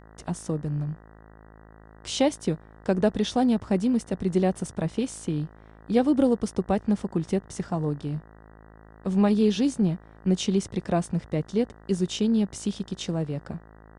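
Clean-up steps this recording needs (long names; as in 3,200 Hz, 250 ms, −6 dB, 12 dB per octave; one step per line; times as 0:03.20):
hum removal 53.9 Hz, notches 36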